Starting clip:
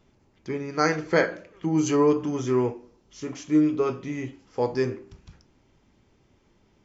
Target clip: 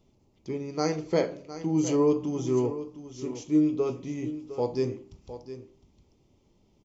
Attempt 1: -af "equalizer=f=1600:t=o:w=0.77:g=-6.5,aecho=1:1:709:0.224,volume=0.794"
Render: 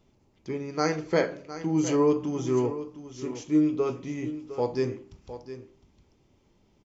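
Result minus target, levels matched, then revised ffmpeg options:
2 kHz band +6.5 dB
-af "equalizer=f=1600:t=o:w=0.77:g=-17,aecho=1:1:709:0.224,volume=0.794"

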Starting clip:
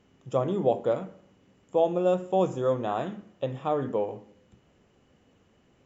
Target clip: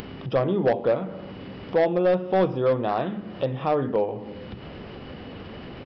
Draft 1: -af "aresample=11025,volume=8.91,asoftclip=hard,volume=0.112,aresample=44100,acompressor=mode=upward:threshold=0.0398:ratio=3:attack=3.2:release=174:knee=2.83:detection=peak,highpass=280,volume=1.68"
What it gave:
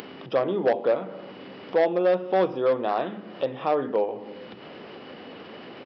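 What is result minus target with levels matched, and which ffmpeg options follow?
250 Hz band -3.0 dB
-af "aresample=11025,volume=8.91,asoftclip=hard,volume=0.112,aresample=44100,acompressor=mode=upward:threshold=0.0398:ratio=3:attack=3.2:release=174:knee=2.83:detection=peak,volume=1.68"

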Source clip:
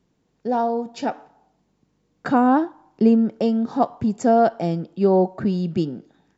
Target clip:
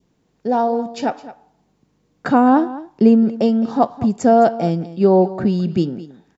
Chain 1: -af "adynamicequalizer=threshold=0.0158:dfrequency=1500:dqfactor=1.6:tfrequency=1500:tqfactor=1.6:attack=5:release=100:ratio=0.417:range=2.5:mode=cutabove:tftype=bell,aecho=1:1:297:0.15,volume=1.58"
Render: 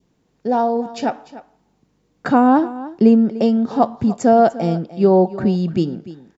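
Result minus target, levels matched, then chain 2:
echo 84 ms late
-af "adynamicequalizer=threshold=0.0158:dfrequency=1500:dqfactor=1.6:tfrequency=1500:tqfactor=1.6:attack=5:release=100:ratio=0.417:range=2.5:mode=cutabove:tftype=bell,aecho=1:1:213:0.15,volume=1.58"

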